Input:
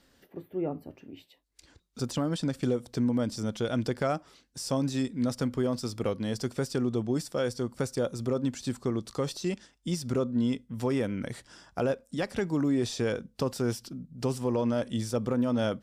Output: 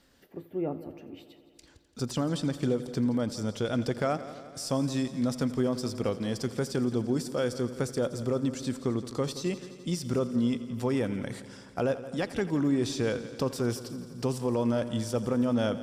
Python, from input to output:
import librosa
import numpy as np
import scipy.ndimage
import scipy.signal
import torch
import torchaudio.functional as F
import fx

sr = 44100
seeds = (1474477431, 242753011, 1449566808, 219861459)

y = fx.echo_heads(x, sr, ms=85, heads='first and second', feedback_pct=67, wet_db=-18)